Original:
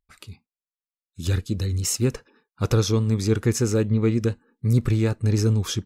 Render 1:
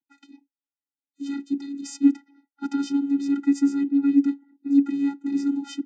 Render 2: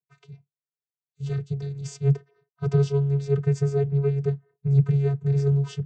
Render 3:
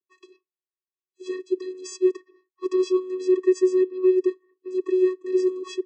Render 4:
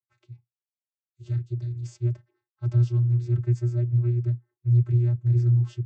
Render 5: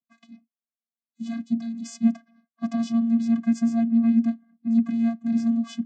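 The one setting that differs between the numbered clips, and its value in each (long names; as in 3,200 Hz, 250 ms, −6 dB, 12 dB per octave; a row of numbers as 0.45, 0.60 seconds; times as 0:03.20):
channel vocoder, frequency: 280, 140, 370, 120, 230 Hertz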